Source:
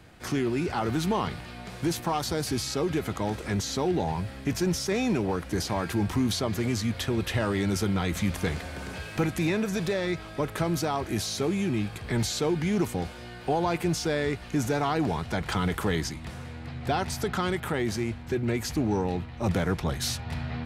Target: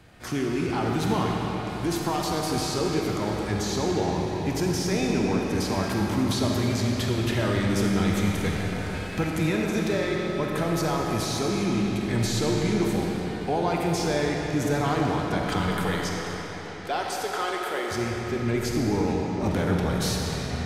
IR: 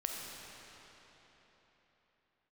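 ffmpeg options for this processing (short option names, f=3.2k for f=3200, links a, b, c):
-filter_complex "[0:a]asettb=1/sr,asplit=3[a][b][c];[a]atrim=end=15.724[d];[b]atrim=start=15.72:end=17.91,asetpts=PTS-STARTPTS,afade=t=in:d=0.004:c=qsin,afade=t=out:st=2.186:d=0.004:c=qsin,highpass=f=360:w=0.5412,highpass=f=360:w=1.3066[e];[c]atrim=start=17.906[f];[d][e]acrossfade=d=0.004:c1=hsin:c2=qsin[g];[g][f]acrossfade=d=0.004:c1=qsin:c2=hsin[h];[1:a]atrim=start_sample=2205,asetrate=42336,aresample=44100[i];[h][i]afir=irnorm=-1:irlink=0"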